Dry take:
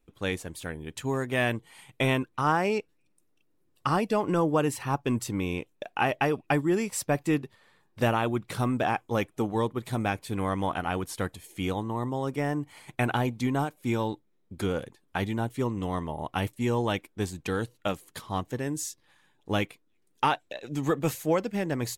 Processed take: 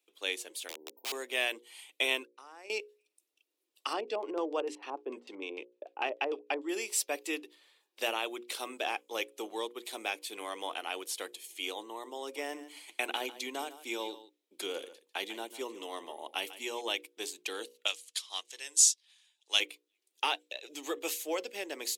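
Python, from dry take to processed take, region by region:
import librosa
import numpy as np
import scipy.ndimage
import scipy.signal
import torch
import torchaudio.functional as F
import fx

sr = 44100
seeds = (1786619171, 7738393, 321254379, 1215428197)

y = fx.chain(x, sr, fx.brickwall_bandstop(low_hz=1000.0, high_hz=14000.0),
    fx.overflow_wrap(gain_db=29.5), at=(0.68, 1.12))
y = fx.chain(y, sr, fx.lowpass(hz=11000.0, slope=24),
    fx.peak_eq(hz=3100.0, db=-10.5, octaves=0.28),
    fx.level_steps(step_db=21), at=(2.25, 2.7))
y = fx.chain(y, sr, fx.bessel_highpass(hz=280.0, order=2),
    fx.tilt_eq(slope=-2.5),
    fx.filter_lfo_lowpass(shape='square', hz=6.7, low_hz=820.0, high_hz=5500.0, q=0.83), at=(3.93, 6.69))
y = fx.chain(y, sr, fx.low_shelf(hz=180.0, db=5.5),
    fx.echo_single(ms=146, db=-15.0), at=(12.21, 16.81))
y = fx.chain(y, sr, fx.weighting(curve='ITU-R 468'),
    fx.upward_expand(threshold_db=-38.0, expansion=1.5), at=(17.86, 19.6))
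y = scipy.signal.sosfilt(scipy.signal.butter(6, 330.0, 'highpass', fs=sr, output='sos'), y)
y = fx.high_shelf_res(y, sr, hz=2100.0, db=9.0, q=1.5)
y = fx.hum_notches(y, sr, base_hz=60, count=9)
y = F.gain(torch.from_numpy(y), -7.5).numpy()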